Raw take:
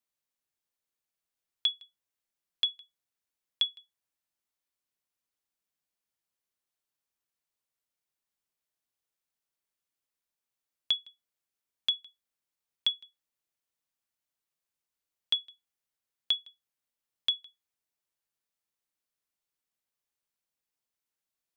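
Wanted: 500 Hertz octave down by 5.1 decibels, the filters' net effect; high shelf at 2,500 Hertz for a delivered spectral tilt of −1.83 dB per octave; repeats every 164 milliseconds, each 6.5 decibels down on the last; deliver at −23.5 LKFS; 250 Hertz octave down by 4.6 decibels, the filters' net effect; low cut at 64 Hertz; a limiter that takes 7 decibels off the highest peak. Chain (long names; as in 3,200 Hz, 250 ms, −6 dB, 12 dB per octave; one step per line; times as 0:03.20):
high-pass filter 64 Hz
parametric band 250 Hz −4.5 dB
parametric band 500 Hz −5 dB
high-shelf EQ 2,500 Hz −8.5 dB
brickwall limiter −28.5 dBFS
repeating echo 164 ms, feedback 47%, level −6.5 dB
level +19.5 dB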